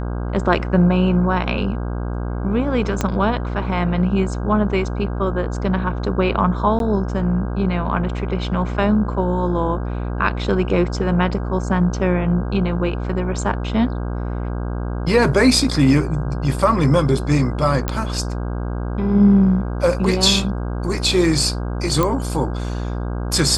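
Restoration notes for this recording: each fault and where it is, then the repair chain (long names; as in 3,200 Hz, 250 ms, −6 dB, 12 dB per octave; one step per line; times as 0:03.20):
mains buzz 60 Hz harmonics 27 −24 dBFS
0:03.01: click −6 dBFS
0:06.79–0:06.80: drop-out 12 ms
0:17.88: click −6 dBFS
0:22.03: click −5 dBFS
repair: click removal
hum removal 60 Hz, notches 27
repair the gap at 0:06.79, 12 ms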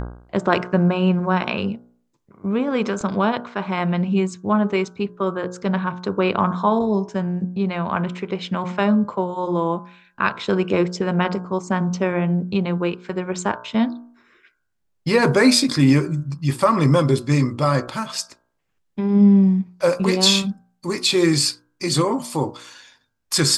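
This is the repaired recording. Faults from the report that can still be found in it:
0:03.01: click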